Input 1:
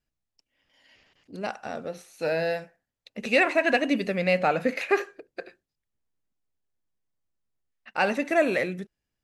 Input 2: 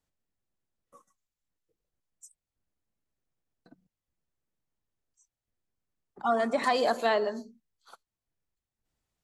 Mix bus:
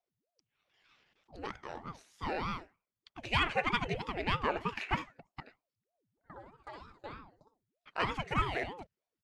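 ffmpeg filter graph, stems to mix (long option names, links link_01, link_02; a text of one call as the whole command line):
ffmpeg -i stem1.wav -i stem2.wav -filter_complex "[0:a]lowshelf=frequency=320:gain=-11,volume=-4.5dB,asplit=2[link_01][link_02];[1:a]aeval=exprs='val(0)*pow(10,-23*if(lt(mod(2.7*n/s,1),2*abs(2.7)/1000),1-mod(2.7*n/s,1)/(2*abs(2.7)/1000),(mod(2.7*n/s,1)-2*abs(2.7)/1000)/(1-2*abs(2.7)/1000))/20)':channel_layout=same,volume=-15dB,asplit=2[link_03][link_04];[link_04]volume=-6dB[link_05];[link_02]apad=whole_len=407151[link_06];[link_03][link_06]sidechaincompress=threshold=-52dB:ratio=3:attack=16:release=1110[link_07];[link_05]aecho=0:1:62|124|186:1|0.17|0.0289[link_08];[link_01][link_07][link_08]amix=inputs=3:normalize=0,lowshelf=frequency=130:gain=11.5,adynamicsmooth=sensitivity=2.5:basefreq=7900,aeval=exprs='val(0)*sin(2*PI*410*n/s+410*0.75/3.2*sin(2*PI*3.2*n/s))':channel_layout=same" out.wav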